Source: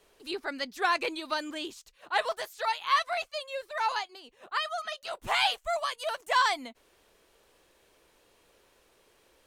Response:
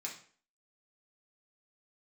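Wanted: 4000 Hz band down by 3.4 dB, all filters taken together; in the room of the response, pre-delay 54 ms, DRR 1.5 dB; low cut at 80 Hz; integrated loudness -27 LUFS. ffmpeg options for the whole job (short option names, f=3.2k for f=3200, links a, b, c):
-filter_complex "[0:a]highpass=80,equalizer=f=4k:t=o:g=-4.5,asplit=2[a][b];[1:a]atrim=start_sample=2205,adelay=54[c];[b][c]afir=irnorm=-1:irlink=0,volume=-1dB[d];[a][d]amix=inputs=2:normalize=0,volume=2.5dB"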